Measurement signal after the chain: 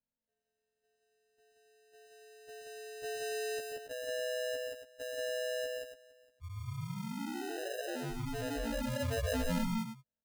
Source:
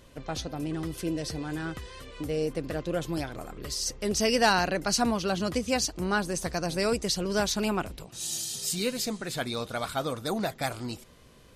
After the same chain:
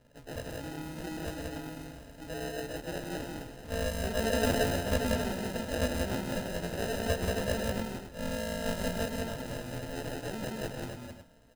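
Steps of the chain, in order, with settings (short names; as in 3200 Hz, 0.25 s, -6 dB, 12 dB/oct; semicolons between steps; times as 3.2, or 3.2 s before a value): frequency quantiser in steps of 2 st; elliptic low-pass 9900 Hz, stop band 40 dB; sample-and-hold 39×; loudspeakers at several distances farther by 44 m -6 dB, 61 m -2 dB, 96 m -9 dB; gain -8 dB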